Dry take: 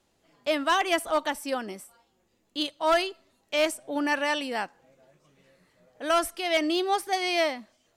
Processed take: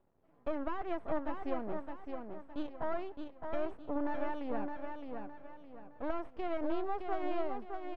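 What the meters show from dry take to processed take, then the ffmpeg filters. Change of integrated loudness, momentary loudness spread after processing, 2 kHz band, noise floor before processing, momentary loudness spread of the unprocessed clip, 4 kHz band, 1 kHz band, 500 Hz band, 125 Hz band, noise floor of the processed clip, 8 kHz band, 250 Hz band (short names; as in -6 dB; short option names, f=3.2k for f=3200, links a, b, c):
-12.5 dB, 9 LU, -19.0 dB, -71 dBFS, 11 LU, -28.0 dB, -11.5 dB, -10.0 dB, n/a, -66 dBFS, under -40 dB, -7.0 dB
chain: -filter_complex "[0:a]acompressor=threshold=-29dB:ratio=6,aeval=exprs='max(val(0),0)':c=same,lowpass=1k,asplit=2[a][b];[b]aecho=0:1:614|1228|1842|2456:0.531|0.186|0.065|0.0228[c];[a][c]amix=inputs=2:normalize=0,volume=1.5dB"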